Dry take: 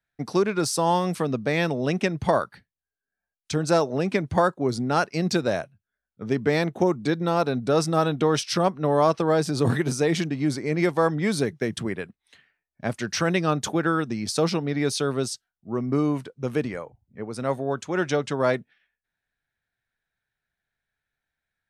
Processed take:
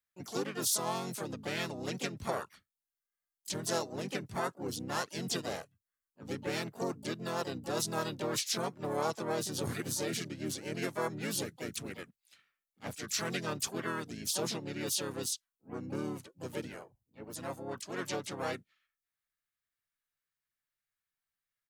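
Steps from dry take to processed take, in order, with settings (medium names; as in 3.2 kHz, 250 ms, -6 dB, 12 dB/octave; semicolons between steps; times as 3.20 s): pre-emphasis filter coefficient 0.8; harmony voices -5 st -4 dB, +4 st -3 dB, +12 st -14 dB; trim -3.5 dB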